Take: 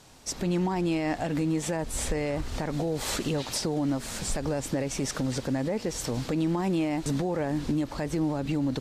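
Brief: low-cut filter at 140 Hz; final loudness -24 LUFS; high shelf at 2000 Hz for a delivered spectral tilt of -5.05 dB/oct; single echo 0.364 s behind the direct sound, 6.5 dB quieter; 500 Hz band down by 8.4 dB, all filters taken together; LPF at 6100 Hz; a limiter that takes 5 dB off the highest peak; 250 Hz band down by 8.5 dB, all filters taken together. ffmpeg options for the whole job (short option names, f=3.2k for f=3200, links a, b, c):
-af "highpass=140,lowpass=6.1k,equalizer=f=250:t=o:g=-8.5,equalizer=f=500:t=o:g=-7.5,highshelf=f=2k:g=-5.5,alimiter=level_in=3dB:limit=-24dB:level=0:latency=1,volume=-3dB,aecho=1:1:364:0.473,volume=13dB"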